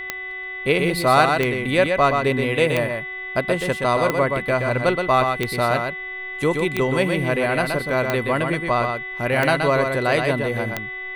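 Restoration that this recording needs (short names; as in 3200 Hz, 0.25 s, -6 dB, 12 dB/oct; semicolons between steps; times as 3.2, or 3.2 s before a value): de-click; de-hum 374.5 Hz, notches 10; notch 2000 Hz, Q 30; inverse comb 0.124 s -5 dB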